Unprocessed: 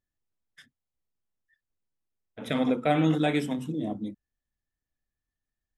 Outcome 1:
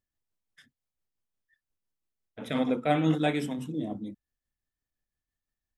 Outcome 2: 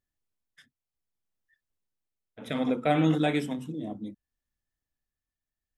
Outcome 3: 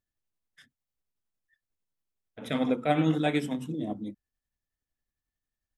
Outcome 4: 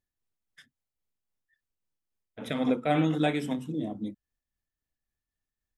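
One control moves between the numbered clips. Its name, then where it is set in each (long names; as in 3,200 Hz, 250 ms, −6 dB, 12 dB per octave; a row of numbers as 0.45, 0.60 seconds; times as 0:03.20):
amplitude tremolo, speed: 5.8, 0.65, 11, 3.7 Hertz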